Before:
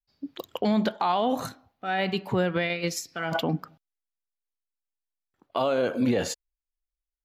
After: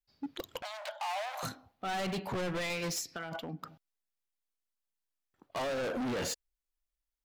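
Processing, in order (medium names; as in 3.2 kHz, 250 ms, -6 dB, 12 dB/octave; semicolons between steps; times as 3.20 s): 3.11–3.63 s: compression 10:1, threshold -37 dBFS, peak gain reduction 15 dB; overload inside the chain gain 32.5 dB; 0.62–1.43 s: rippled Chebyshev high-pass 570 Hz, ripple 3 dB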